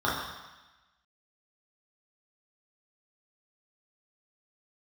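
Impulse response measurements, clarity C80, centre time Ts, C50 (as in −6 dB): 4.5 dB, 68 ms, 2.0 dB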